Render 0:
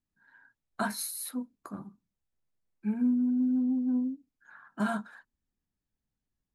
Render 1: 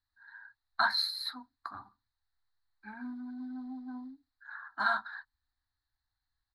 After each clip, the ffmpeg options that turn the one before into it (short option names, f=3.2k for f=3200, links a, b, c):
-af "firequalizer=gain_entry='entry(110,0);entry(160,-30);entry(280,-10);entry(490,-24);entry(760,4);entry(1800,9);entry(2700,-15);entry(4100,15);entry(6100,-16)':delay=0.05:min_phase=1"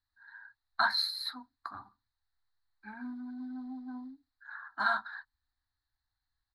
-af anull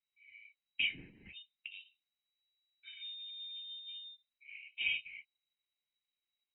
-af "lowpass=f=3.3k:t=q:w=0.5098,lowpass=f=3.3k:t=q:w=0.6013,lowpass=f=3.3k:t=q:w=0.9,lowpass=f=3.3k:t=q:w=2.563,afreqshift=-3900,volume=-5.5dB"